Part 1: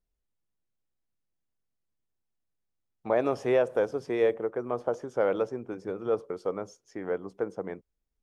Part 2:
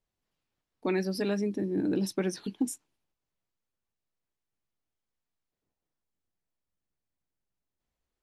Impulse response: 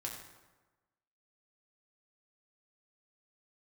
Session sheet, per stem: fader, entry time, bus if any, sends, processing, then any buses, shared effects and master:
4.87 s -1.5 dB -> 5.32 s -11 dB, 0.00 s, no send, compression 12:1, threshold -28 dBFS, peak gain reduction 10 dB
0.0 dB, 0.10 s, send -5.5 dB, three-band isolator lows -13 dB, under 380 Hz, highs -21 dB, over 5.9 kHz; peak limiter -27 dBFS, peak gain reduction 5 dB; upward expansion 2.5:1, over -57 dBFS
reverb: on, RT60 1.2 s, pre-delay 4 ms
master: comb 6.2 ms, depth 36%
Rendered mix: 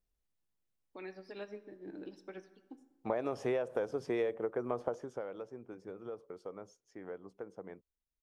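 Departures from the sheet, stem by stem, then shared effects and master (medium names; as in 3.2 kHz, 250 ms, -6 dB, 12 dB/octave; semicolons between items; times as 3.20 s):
stem 2 0.0 dB -> -10.5 dB; master: missing comb 6.2 ms, depth 36%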